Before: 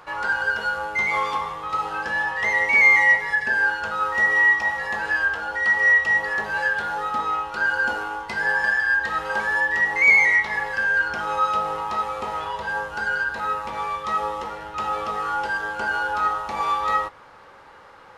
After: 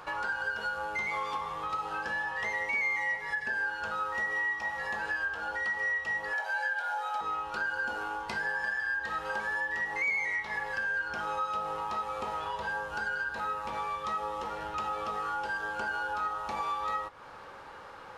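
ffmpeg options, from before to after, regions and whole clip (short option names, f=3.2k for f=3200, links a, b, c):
-filter_complex "[0:a]asettb=1/sr,asplit=3[a][b][c];[a]atrim=end=6.334[d];[b]atrim=start=6.33:end=7.21,asetpts=PTS-STARTPTS,afade=t=in:d=0.004:c=qsin,afade=t=out:st=0.876:d=0.004:c=qsin,highpass=f=430:w=0.5412,highpass=f=430:w=1.3066,aecho=1:1:1.3:0.73,atrim=end_sample=38808[e];[c]atrim=start=7.206[f];[d][e]acrossfade=d=0.004:c1=hsin:c2=qsin[g];[g][f]acrossfade=d=0.004:c1=qsin:c2=hsin,bandreject=f=2k:w=14,acompressor=threshold=-34dB:ratio=3"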